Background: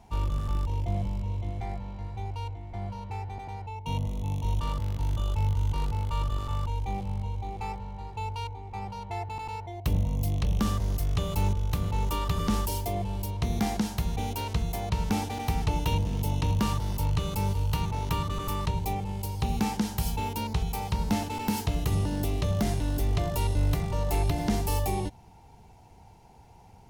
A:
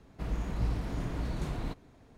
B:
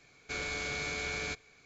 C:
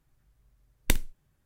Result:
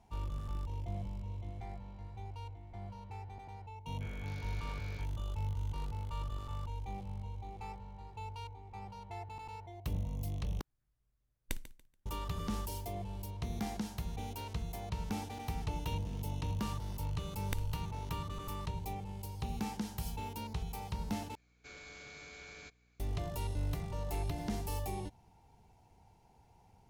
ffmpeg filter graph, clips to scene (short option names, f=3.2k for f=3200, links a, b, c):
-filter_complex "[2:a]asplit=2[a][b];[3:a]asplit=2[c][d];[0:a]volume=-10.5dB[e];[a]afwtdn=0.00891[f];[c]aecho=1:1:143|286|429:0.178|0.0445|0.0111[g];[d]acompressor=threshold=-35dB:ratio=6:attack=3.2:release=140:knee=1:detection=peak[h];[b]aeval=exprs='val(0)+0.00178*(sin(2*PI*60*n/s)+sin(2*PI*2*60*n/s)/2+sin(2*PI*3*60*n/s)/3+sin(2*PI*4*60*n/s)/4+sin(2*PI*5*60*n/s)/5)':c=same[i];[e]asplit=3[j][k][l];[j]atrim=end=10.614[m];[g]atrim=end=1.45,asetpts=PTS-STARTPTS,volume=-15dB[n];[k]atrim=start=12.056:end=21.354[o];[i]atrim=end=1.65,asetpts=PTS-STARTPTS,volume=-15dB[p];[l]atrim=start=22.996[q];[f]atrim=end=1.65,asetpts=PTS-STARTPTS,volume=-14.5dB,afade=t=in:d=0.004:c=hsin,afade=t=out:st=1.646:d=0.004:c=hsin,adelay=3710[r];[h]atrim=end=1.45,asetpts=PTS-STARTPTS,volume=-0.5dB,afade=t=in:d=0.004:c=hsin,afade=t=out:st=1.446:d=0.004:c=hsin,adelay=16630[s];[m][n]acrossfade=d=0.004:c1=hsin:c2=hsin[t];[t][o]acrossfade=d=0.004:c1=hsin:c2=hsin[u];[u][p]acrossfade=d=0.004:c1=hsin:c2=hsin[v];[v][q]acrossfade=d=0.004:c1=hsin:c2=hsin[w];[w][r][s]amix=inputs=3:normalize=0"